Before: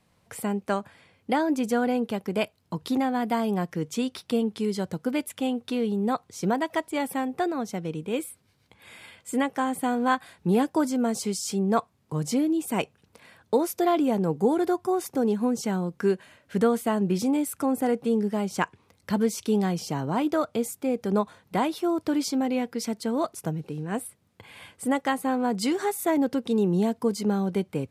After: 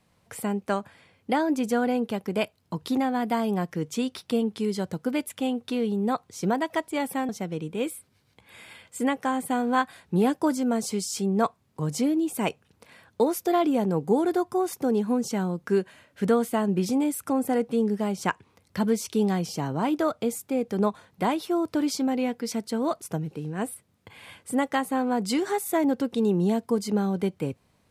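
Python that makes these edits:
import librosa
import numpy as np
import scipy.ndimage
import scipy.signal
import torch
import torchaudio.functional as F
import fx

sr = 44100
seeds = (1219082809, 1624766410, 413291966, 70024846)

y = fx.edit(x, sr, fx.cut(start_s=7.29, length_s=0.33), tone=tone)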